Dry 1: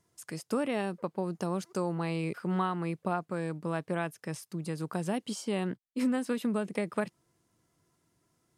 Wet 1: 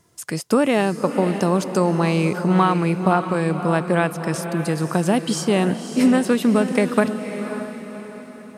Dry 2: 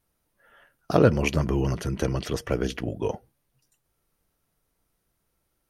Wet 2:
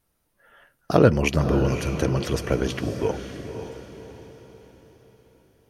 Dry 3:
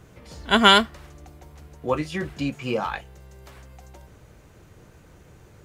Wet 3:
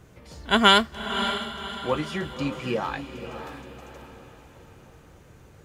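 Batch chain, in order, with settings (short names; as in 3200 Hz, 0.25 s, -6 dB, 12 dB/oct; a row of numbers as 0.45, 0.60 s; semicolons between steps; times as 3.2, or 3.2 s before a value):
diffused feedback echo 0.557 s, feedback 44%, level -9 dB; normalise peaks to -3 dBFS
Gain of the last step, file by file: +13.0, +2.5, -2.0 dB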